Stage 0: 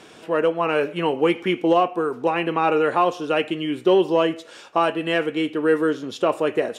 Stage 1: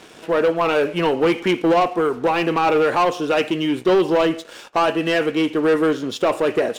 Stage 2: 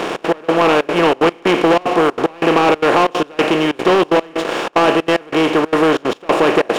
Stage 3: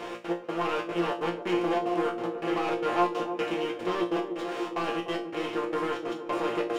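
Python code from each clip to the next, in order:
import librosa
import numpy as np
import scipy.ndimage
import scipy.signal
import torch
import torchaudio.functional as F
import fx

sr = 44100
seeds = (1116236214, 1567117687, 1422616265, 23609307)

y1 = fx.leveller(x, sr, passes=2)
y1 = y1 * librosa.db_to_amplitude(-2.0)
y2 = fx.bin_compress(y1, sr, power=0.4)
y2 = fx.step_gate(y2, sr, bpm=186, pattern='xx.x..xxxx.x', floor_db=-24.0, edge_ms=4.5)
y3 = fx.resonator_bank(y2, sr, root=46, chord='fifth', decay_s=0.29)
y3 = fx.echo_banded(y3, sr, ms=298, feedback_pct=76, hz=320.0, wet_db=-7.0)
y3 = y3 * librosa.db_to_amplitude(-4.0)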